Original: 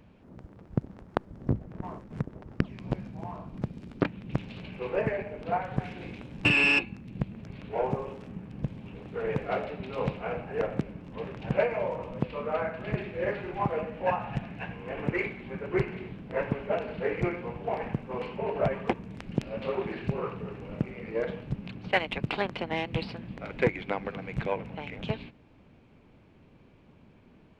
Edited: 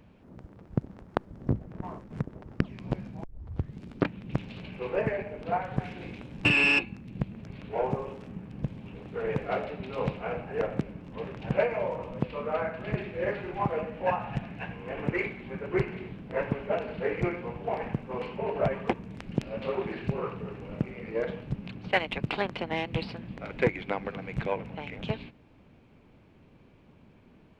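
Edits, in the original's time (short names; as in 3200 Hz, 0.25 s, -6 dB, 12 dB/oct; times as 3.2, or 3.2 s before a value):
3.24 tape start 0.58 s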